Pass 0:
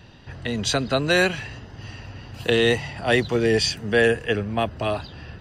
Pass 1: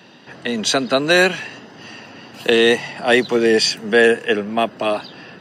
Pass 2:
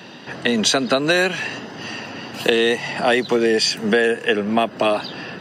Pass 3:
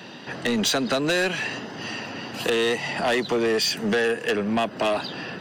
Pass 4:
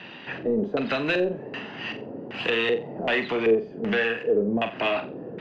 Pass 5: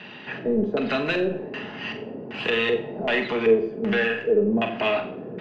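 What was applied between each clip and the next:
HPF 190 Hz 24 dB/oct; gain +5.5 dB
compressor 6:1, threshold -21 dBFS, peak gain reduction 12 dB; gain +6.5 dB
soft clip -16 dBFS, distortion -12 dB; gain -1.5 dB
LFO low-pass square 1.3 Hz 460–2600 Hz; flutter echo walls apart 7.6 m, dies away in 0.3 s; gain -4 dB
shoebox room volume 2700 m³, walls furnished, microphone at 1.4 m

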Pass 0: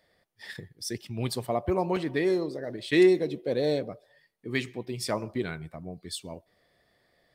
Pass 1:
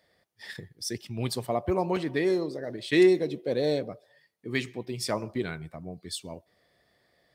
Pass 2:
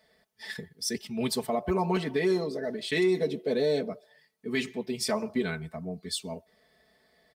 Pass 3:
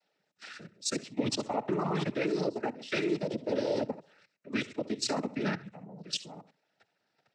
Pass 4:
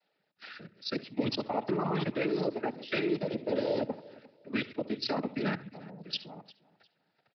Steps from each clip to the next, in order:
HPF 46 Hz; bell 5900 Hz +2 dB
comb 4.6 ms, depth 93%; limiter -17.5 dBFS, peak gain reduction 8 dB
flutter echo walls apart 11.4 m, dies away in 0.31 s; level quantiser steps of 16 dB; noise vocoder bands 12; gain +2.5 dB
feedback echo 0.352 s, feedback 26%, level -21 dB; downsampling 11025 Hz

